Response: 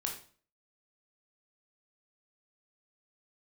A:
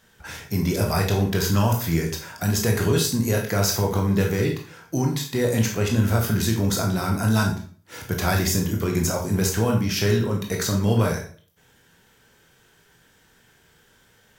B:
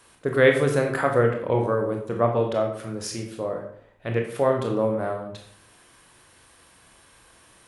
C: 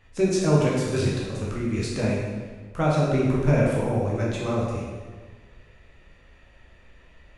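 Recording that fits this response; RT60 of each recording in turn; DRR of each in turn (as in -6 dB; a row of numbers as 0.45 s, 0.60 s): A; 0.45 s, 0.65 s, 1.5 s; 0.5 dB, 2.0 dB, -5.0 dB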